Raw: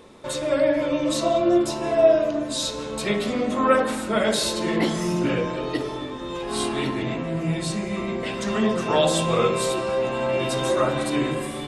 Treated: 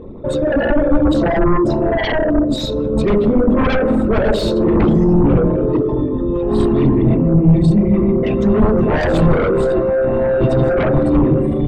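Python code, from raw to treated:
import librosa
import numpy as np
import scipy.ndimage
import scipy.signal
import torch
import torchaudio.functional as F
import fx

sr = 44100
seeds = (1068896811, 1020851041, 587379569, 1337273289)

y = fx.envelope_sharpen(x, sr, power=2.0)
y = fx.fold_sine(y, sr, drive_db=14, ceiling_db=-6.0)
y = fx.riaa(y, sr, side='playback')
y = F.gain(torch.from_numpy(y), -9.0).numpy()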